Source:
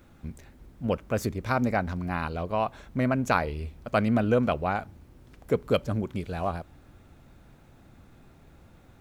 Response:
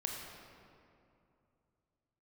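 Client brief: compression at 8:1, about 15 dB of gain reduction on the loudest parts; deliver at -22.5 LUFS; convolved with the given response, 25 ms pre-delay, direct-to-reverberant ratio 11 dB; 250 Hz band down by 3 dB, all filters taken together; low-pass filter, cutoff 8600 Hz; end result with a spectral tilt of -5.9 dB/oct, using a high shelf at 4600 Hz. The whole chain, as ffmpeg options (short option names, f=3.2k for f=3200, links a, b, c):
-filter_complex "[0:a]lowpass=8.6k,equalizer=f=250:t=o:g=-3.5,highshelf=f=4.6k:g=6,acompressor=threshold=-35dB:ratio=8,asplit=2[a][b];[1:a]atrim=start_sample=2205,adelay=25[c];[b][c]afir=irnorm=-1:irlink=0,volume=-12.5dB[d];[a][d]amix=inputs=2:normalize=0,volume=18dB"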